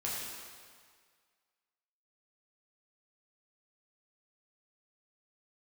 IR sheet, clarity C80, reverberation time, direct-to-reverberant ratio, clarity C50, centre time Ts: 0.5 dB, 1.8 s, −6.5 dB, −1.0 dB, 114 ms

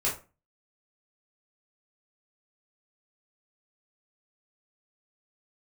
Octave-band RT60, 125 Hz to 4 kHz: 0.40, 0.40, 0.35, 0.30, 0.30, 0.20 seconds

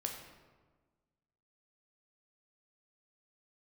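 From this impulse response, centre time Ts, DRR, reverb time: 39 ms, 1.5 dB, 1.4 s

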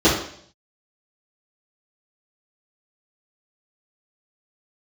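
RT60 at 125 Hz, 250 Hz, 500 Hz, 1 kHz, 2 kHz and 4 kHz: 0.80, 0.60, 0.65, 0.60, 0.60, 0.65 seconds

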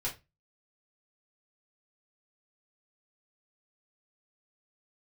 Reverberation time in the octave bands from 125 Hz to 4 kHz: 0.35, 0.30, 0.25, 0.20, 0.20, 0.20 seconds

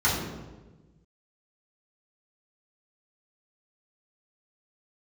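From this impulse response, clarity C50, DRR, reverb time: 2.5 dB, −9.0 dB, 1.2 s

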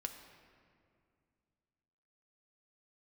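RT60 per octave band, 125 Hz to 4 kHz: 3.0, 2.9, 2.4, 2.2, 1.9, 1.3 seconds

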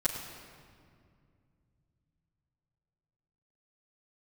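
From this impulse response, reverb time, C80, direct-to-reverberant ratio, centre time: 2.2 s, 5.5 dB, −10.5 dB, 57 ms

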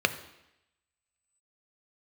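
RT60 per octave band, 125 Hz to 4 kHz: 0.75, 0.85, 0.85, 0.85, 0.95, 0.90 seconds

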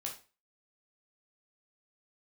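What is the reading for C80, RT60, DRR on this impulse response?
15.0 dB, 0.35 s, −1.0 dB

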